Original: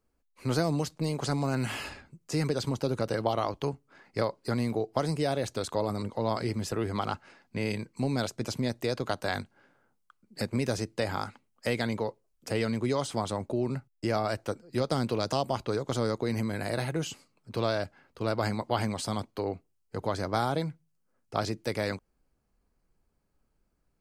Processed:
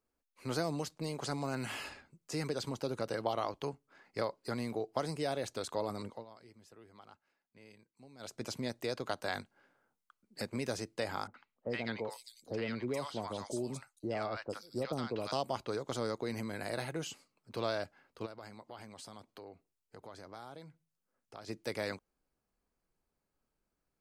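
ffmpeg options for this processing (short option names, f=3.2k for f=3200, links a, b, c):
-filter_complex "[0:a]asettb=1/sr,asplit=3[a][b][c];[a]atrim=end=11.274[d];[b]atrim=start=11.27:end=15.32,asetpts=PTS-STARTPTS,afade=t=in:d=0.004:c=qsin,afade=t=out:st=4.046:d=0.004:c=qsin,acrossover=split=860|4800[e][f][g];[f]adelay=70[h];[g]adelay=470[i];[e][h][i]amix=inputs=3:normalize=0,atrim=end_sample=178605[j];[c]atrim=start=15.316[k];[d][j]acrossfade=d=0.004:c1=hsin:c2=qsin[l];[l][k]acrossfade=d=0.004:c1=qsin:c2=hsin,asplit=3[m][n][o];[m]afade=t=out:st=18.25:d=0.02[p];[n]acompressor=threshold=-45dB:ratio=2.5:attack=3.2:release=140:knee=1:detection=peak,afade=t=in:st=18.25:d=0.02,afade=t=out:st=21.48:d=0.02[q];[o]afade=t=in:st=21.48:d=0.02[r];[p][q][r]amix=inputs=3:normalize=0,asplit=3[s][t][u];[s]atrim=end=6.25,asetpts=PTS-STARTPTS,afade=t=out:st=6.09:d=0.16:silence=0.105925[v];[t]atrim=start=6.25:end=8.19,asetpts=PTS-STARTPTS,volume=-19.5dB[w];[u]atrim=start=8.19,asetpts=PTS-STARTPTS,afade=t=in:d=0.16:silence=0.105925[x];[v][w][x]concat=n=3:v=0:a=1,lowshelf=f=190:g=-9,volume=-5dB"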